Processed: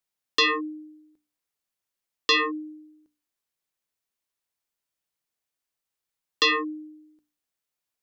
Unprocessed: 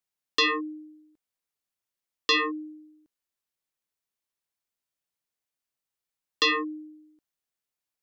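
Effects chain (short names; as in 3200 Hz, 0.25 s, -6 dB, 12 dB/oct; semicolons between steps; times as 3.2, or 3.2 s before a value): notches 60/120/180/240/300 Hz; gain +2 dB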